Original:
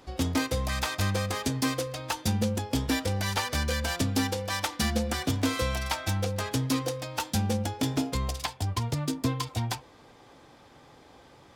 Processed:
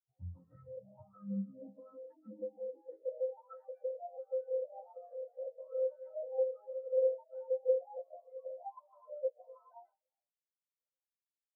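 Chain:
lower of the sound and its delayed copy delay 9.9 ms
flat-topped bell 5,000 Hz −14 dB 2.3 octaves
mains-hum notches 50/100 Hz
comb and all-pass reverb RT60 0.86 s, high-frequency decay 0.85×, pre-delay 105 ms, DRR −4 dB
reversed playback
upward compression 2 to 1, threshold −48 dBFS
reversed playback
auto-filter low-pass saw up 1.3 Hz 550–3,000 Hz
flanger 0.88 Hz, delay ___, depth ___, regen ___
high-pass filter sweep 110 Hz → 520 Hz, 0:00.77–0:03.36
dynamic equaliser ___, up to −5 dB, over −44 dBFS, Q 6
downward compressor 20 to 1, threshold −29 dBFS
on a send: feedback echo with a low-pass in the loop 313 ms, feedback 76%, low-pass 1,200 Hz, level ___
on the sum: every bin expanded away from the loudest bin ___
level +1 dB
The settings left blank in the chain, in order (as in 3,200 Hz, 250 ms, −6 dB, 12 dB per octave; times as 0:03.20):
8.2 ms, 4.5 ms, +80%, 390 Hz, −21 dB, 4 to 1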